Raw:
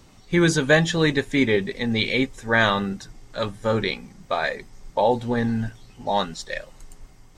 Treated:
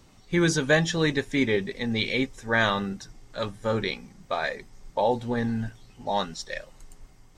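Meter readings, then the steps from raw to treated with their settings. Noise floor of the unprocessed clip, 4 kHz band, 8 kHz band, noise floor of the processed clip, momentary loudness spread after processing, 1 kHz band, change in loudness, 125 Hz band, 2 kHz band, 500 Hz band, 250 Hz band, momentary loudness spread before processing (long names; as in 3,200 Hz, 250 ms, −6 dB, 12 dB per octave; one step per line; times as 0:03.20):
−50 dBFS, −3.5 dB, −2.0 dB, −54 dBFS, 14 LU, −4.0 dB, −4.0 dB, −4.0 dB, −4.0 dB, −4.0 dB, −4.0 dB, 15 LU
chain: dynamic equaliser 5,600 Hz, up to +6 dB, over −53 dBFS, Q 5.3
level −4 dB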